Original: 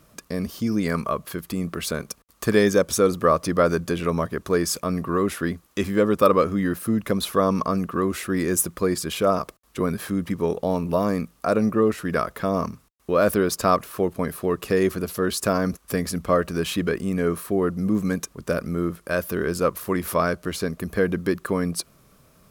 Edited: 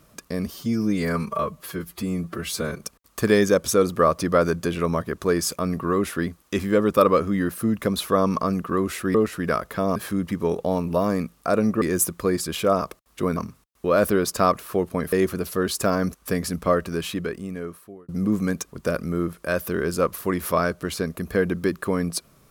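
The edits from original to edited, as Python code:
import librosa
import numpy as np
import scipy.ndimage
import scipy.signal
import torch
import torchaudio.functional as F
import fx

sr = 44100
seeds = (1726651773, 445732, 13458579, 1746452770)

y = fx.edit(x, sr, fx.stretch_span(start_s=0.54, length_s=1.51, factor=1.5),
    fx.swap(start_s=8.39, length_s=1.55, other_s=11.8, other_length_s=0.81),
    fx.cut(start_s=14.37, length_s=0.38),
    fx.fade_out_span(start_s=16.29, length_s=1.42), tone=tone)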